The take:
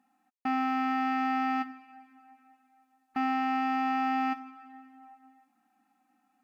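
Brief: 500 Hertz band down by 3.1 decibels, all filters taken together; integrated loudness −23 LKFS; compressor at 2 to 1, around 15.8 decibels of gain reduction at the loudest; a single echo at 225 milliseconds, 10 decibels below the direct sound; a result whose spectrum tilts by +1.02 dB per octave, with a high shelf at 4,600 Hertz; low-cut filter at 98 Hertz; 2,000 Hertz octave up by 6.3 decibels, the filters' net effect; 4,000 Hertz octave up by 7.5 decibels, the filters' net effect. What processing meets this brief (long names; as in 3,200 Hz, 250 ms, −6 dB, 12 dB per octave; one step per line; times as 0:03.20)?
high-pass filter 98 Hz
parametric band 500 Hz −6 dB
parametric band 2,000 Hz +5 dB
parametric band 4,000 Hz +6.5 dB
high-shelf EQ 4,600 Hz +5 dB
downward compressor 2 to 1, threshold −56 dBFS
single-tap delay 225 ms −10 dB
level +21.5 dB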